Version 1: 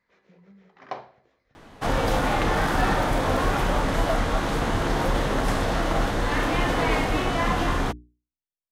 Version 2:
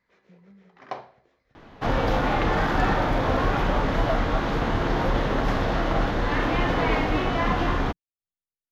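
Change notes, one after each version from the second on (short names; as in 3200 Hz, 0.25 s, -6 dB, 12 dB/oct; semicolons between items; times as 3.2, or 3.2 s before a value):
second sound: add running mean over 5 samples; master: remove notches 60/120/180/240/300/360/420 Hz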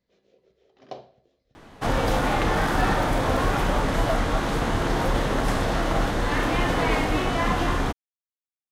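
speech: muted; first sound: add band shelf 1400 Hz -13 dB; second sound: remove running mean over 5 samples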